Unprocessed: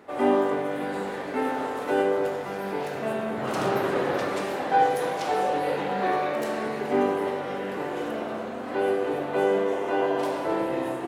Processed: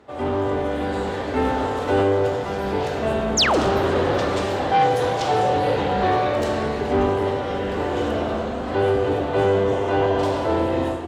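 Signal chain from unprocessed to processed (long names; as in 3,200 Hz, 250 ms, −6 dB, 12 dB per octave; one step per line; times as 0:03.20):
sub-octave generator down 2 octaves, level +1 dB
sound drawn into the spectrogram fall, 0:03.37–0:03.60, 240–7,600 Hz −23 dBFS
in parallel at −8 dB: sine wavefolder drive 9 dB, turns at −8.5 dBFS
on the sum: high-pass filter 110 Hz 6 dB per octave
high-shelf EQ 2,700 Hz −10.5 dB
automatic gain control gain up to 9 dB
flat-topped bell 4,900 Hz +8.5 dB
level −8.5 dB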